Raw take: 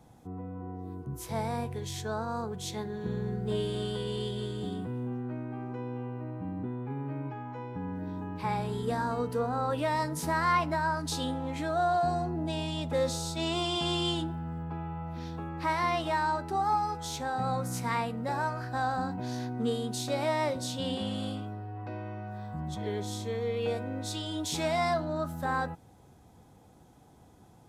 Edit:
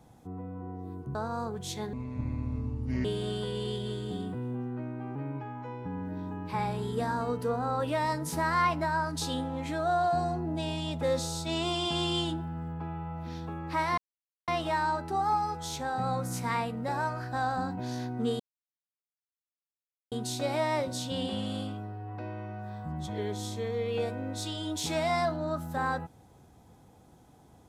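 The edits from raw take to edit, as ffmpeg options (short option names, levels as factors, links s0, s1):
-filter_complex "[0:a]asplit=7[s0][s1][s2][s3][s4][s5][s6];[s0]atrim=end=1.152[s7];[s1]atrim=start=2.118:end=2.904[s8];[s2]atrim=start=2.9:end=3.57,asetpts=PTS-STARTPTS,asetrate=26460,aresample=44100[s9];[s3]atrim=start=3.566:end=5.682[s10];[s4]atrim=start=7.058:end=15.88,asetpts=PTS-STARTPTS,afade=t=out:st=8.818:d=0.004:c=hsin,apad=pad_dur=0.5[s11];[s5]atrim=start=15.88:end=19.8,asetpts=PTS-STARTPTS,afade=t=in:d=0.004:c=hsin,afade=t=out:st=3.916:d=0.004:c=hsin,apad=pad_dur=1.72[s12];[s6]atrim=start=19.8,asetpts=PTS-STARTPTS,afade=t=in:d=0.004:c=hsin[s13];[s7][s8]acrossfade=d=0.004:c1=hsin:c2=hsin[s14];[s14][s9]acrossfade=d=0.004:c1=hsin:c2=hsin[s15];[s15][s10]acrossfade=d=0.004:c1=hsin:c2=hsin[s16];[s11][s12][s13]concat=n=3:v=0:a=1[s17];[s16][s17]acrossfade=d=0.004:c1=hsin:c2=hsin"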